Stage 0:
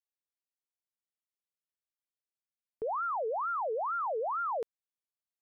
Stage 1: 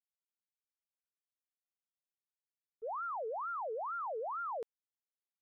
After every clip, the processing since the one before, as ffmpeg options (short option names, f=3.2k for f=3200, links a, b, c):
-af "agate=range=-33dB:threshold=-26dB:ratio=3:detection=peak,volume=3.5dB"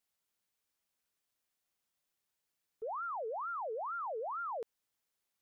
-af "alimiter=level_in=22.5dB:limit=-24dB:level=0:latency=1,volume=-22.5dB,volume=10.5dB"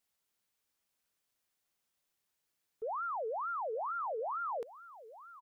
-af "aecho=1:1:886:0.158,volume=2dB"